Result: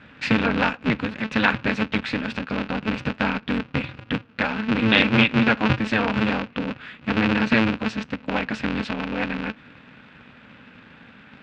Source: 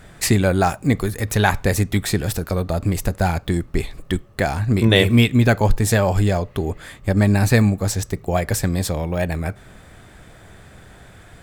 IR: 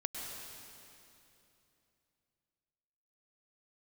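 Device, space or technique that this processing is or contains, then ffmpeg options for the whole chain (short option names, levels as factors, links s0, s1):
ring modulator pedal into a guitar cabinet: -af "aeval=exprs='val(0)*sgn(sin(2*PI*110*n/s))':c=same,highpass=89,equalizer=f=92:t=q:w=4:g=-5,equalizer=f=250:t=q:w=4:g=7,equalizer=f=360:t=q:w=4:g=-9,equalizer=f=680:t=q:w=4:g=-6,equalizer=f=1500:t=q:w=4:g=6,equalizer=f=2600:t=q:w=4:g=10,lowpass=f=4100:w=0.5412,lowpass=f=4100:w=1.3066,volume=0.631"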